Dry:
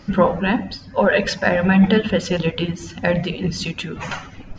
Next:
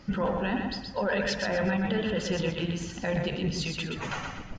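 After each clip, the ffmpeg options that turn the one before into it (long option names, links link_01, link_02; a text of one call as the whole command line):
ffmpeg -i in.wav -af "alimiter=limit=-13.5dB:level=0:latency=1:release=14,areverse,acompressor=mode=upward:threshold=-25dB:ratio=2.5,areverse,aecho=1:1:123|246|369|492|615:0.562|0.208|0.077|0.0285|0.0105,volume=-7dB" out.wav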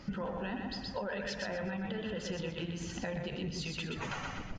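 ffmpeg -i in.wav -af "acompressor=threshold=-35dB:ratio=6" out.wav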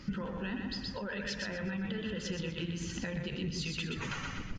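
ffmpeg -i in.wav -af "equalizer=frequency=710:width_type=o:width=0.85:gain=-12.5,volume=2.5dB" out.wav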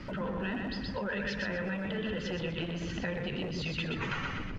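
ffmpeg -i in.wav -filter_complex "[0:a]aeval=exprs='val(0)+0.5*0.00266*sgn(val(0))':channel_layout=same,lowpass=3200,acrossover=split=330|730|1500[link_01][link_02][link_03][link_04];[link_01]aeval=exprs='0.0141*(abs(mod(val(0)/0.0141+3,4)-2)-1)':channel_layout=same[link_05];[link_05][link_02][link_03][link_04]amix=inputs=4:normalize=0,volume=4dB" out.wav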